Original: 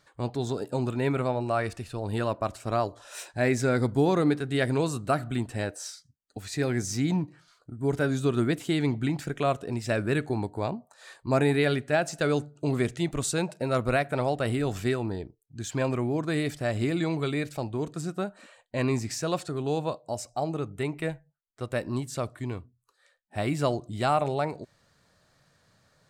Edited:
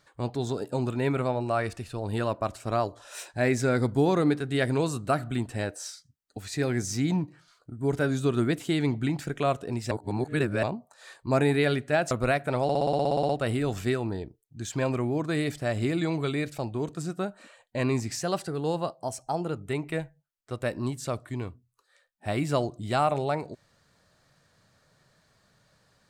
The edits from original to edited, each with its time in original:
9.91–10.63 s: reverse
12.11–13.76 s: delete
14.28 s: stutter 0.06 s, 12 plays
19.20–20.67 s: speed 108%

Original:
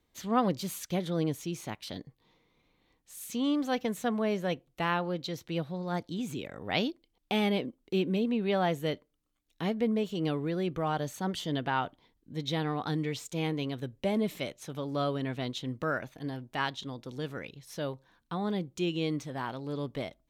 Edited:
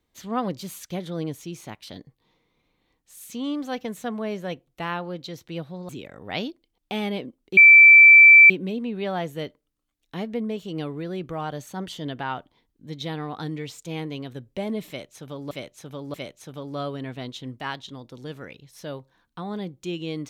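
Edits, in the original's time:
5.89–6.29 s: delete
7.97 s: add tone 2.33 kHz -6.5 dBFS 0.93 s
14.35–14.98 s: loop, 3 plays
15.81–16.54 s: delete

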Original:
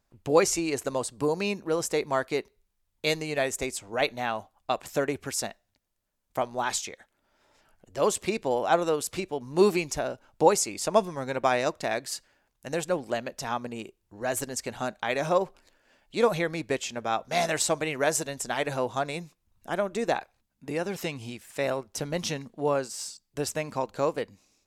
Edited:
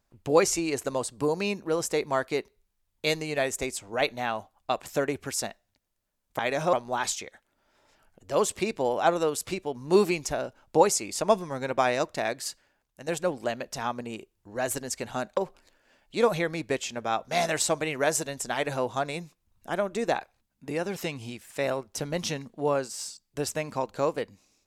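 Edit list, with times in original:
12.15–12.74 s: fade out, to -7 dB
15.03–15.37 s: move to 6.39 s

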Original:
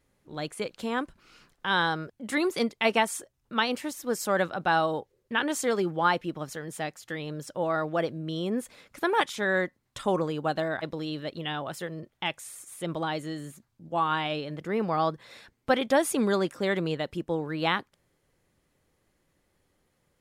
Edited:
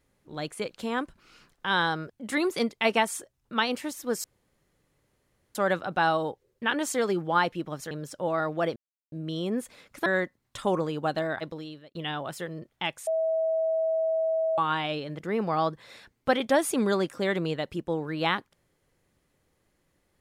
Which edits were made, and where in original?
4.24 s: insert room tone 1.31 s
6.60–7.27 s: delete
8.12 s: insert silence 0.36 s
9.06–9.47 s: delete
10.75–11.36 s: fade out
12.48–13.99 s: bleep 646 Hz -23 dBFS

